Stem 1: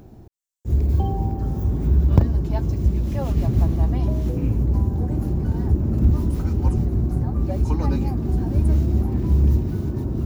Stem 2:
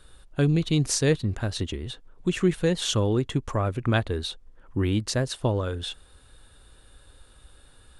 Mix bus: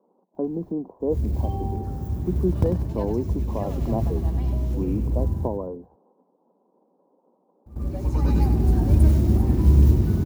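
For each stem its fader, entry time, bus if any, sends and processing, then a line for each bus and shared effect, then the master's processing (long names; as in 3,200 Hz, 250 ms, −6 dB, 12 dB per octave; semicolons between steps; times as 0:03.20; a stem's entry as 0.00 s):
+1.0 dB, 0.35 s, muted 0:05.38–0:07.66, no send, echo send −8 dB, log-companded quantiser 8 bits; automatic ducking −23 dB, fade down 0.30 s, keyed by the second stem
−0.5 dB, 0.00 s, no send, no echo send, transient designer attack 0 dB, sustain +5 dB; Chebyshev band-pass filter 180–1,000 Hz, order 5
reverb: not used
echo: repeating echo 97 ms, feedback 44%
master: high-shelf EQ 8,600 Hz +3 dB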